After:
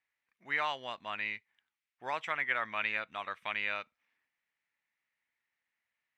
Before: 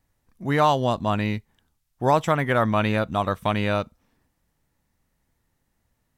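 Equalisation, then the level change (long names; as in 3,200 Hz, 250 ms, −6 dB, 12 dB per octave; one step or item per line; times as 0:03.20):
resonant band-pass 2,200 Hz, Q 2.9
0.0 dB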